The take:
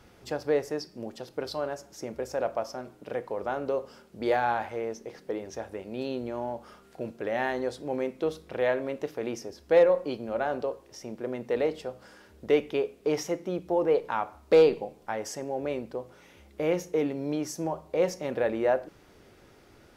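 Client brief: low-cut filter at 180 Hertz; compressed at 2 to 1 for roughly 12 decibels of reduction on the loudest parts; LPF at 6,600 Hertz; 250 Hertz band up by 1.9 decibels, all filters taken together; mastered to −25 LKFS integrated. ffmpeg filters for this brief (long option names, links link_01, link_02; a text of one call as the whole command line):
ffmpeg -i in.wav -af "highpass=180,lowpass=6600,equalizer=frequency=250:width_type=o:gain=3.5,acompressor=threshold=-37dB:ratio=2,volume=12.5dB" out.wav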